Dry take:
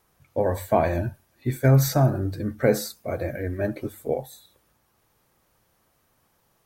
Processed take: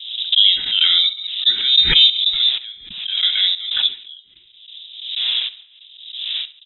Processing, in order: wind noise 570 Hz -39 dBFS; gate with hold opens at -45 dBFS; low-pass opened by the level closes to 610 Hz, open at -20.5 dBFS; dynamic EQ 370 Hz, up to +6 dB, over -34 dBFS, Q 0.96; in parallel at +2 dB: limiter -15 dBFS, peak gain reduction 11.5 dB; on the sum: step gate "x.xx.xx.." 93 bpm -24 dB; on a send: feedback echo 69 ms, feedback 25%, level -16 dB; on the sum: inverted band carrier 3800 Hz; backwards sustainer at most 62 dB/s; gain +1 dB

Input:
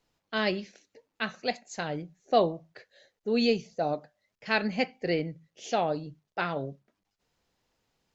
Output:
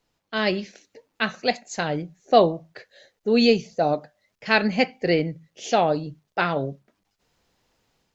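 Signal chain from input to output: AGC gain up to 5.5 dB; gain +2 dB

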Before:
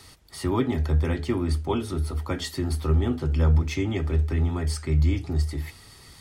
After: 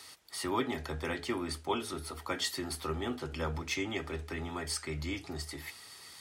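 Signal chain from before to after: HPF 830 Hz 6 dB/oct

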